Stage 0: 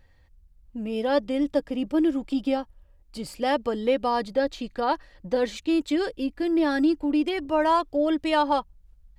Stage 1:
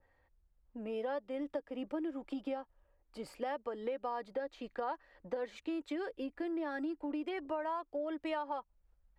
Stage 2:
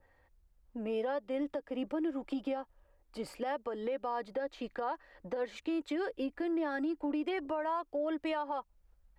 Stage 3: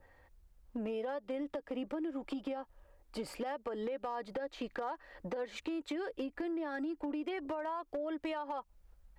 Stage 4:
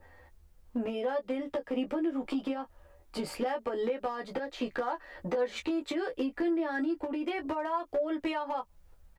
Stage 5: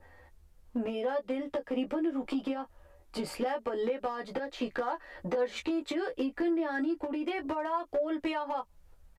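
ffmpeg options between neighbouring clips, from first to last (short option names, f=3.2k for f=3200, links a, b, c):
-filter_complex "[0:a]acrossover=split=340 2000:gain=0.2 1 0.141[a][b][c];[a][b][c]amix=inputs=3:normalize=0,acompressor=threshold=-33dB:ratio=6,adynamicequalizer=threshold=0.00251:dfrequency=1800:dqfactor=0.7:tfrequency=1800:tqfactor=0.7:attack=5:release=100:ratio=0.375:range=2:mode=boostabove:tftype=highshelf,volume=-2.5dB"
-af "alimiter=level_in=7dB:limit=-24dB:level=0:latency=1:release=81,volume=-7dB,volume=4.5dB"
-af "acompressor=threshold=-39dB:ratio=12,asoftclip=type=hard:threshold=-35.5dB,volume=4.5dB"
-af "aecho=1:1:12|26:0.631|0.335,volume=4.5dB"
-af "aresample=32000,aresample=44100"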